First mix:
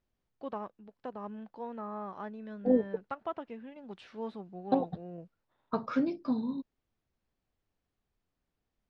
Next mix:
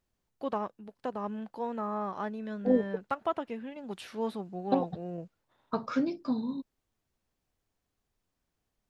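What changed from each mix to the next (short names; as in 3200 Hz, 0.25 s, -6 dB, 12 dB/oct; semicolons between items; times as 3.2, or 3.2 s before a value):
first voice +5.5 dB; master: remove air absorption 130 m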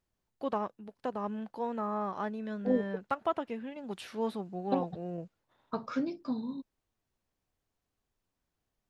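second voice -3.5 dB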